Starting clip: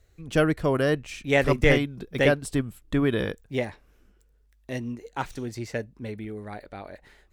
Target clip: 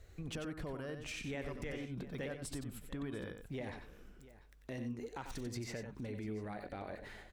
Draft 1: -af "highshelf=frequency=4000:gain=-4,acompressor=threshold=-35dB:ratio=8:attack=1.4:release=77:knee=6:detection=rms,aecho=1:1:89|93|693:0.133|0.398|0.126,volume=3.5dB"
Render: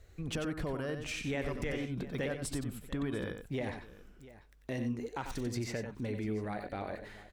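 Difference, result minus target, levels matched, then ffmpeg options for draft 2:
downward compressor: peak gain reduction −6.5 dB
-af "highshelf=frequency=4000:gain=-4,acompressor=threshold=-42.5dB:ratio=8:attack=1.4:release=77:knee=6:detection=rms,aecho=1:1:89|93|693:0.133|0.398|0.126,volume=3.5dB"

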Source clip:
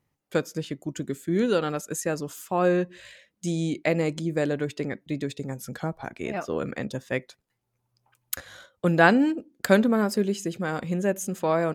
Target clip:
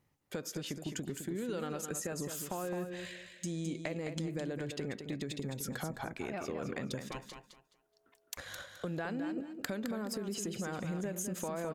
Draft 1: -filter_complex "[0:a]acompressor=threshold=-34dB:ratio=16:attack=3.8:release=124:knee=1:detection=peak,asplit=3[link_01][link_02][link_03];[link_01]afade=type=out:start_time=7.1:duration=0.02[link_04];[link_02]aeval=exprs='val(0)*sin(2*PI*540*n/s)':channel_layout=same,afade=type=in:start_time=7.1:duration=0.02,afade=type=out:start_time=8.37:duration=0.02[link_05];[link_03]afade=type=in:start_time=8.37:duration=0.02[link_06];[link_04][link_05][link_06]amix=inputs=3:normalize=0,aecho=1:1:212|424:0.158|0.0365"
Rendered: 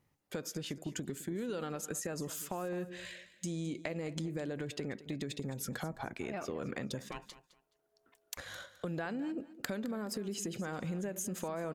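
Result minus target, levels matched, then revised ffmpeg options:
echo-to-direct −8.5 dB
-filter_complex "[0:a]acompressor=threshold=-34dB:ratio=16:attack=3.8:release=124:knee=1:detection=peak,asplit=3[link_01][link_02][link_03];[link_01]afade=type=out:start_time=7.1:duration=0.02[link_04];[link_02]aeval=exprs='val(0)*sin(2*PI*540*n/s)':channel_layout=same,afade=type=in:start_time=7.1:duration=0.02,afade=type=out:start_time=8.37:duration=0.02[link_05];[link_03]afade=type=in:start_time=8.37:duration=0.02[link_06];[link_04][link_05][link_06]amix=inputs=3:normalize=0,aecho=1:1:212|424|636:0.422|0.097|0.0223"

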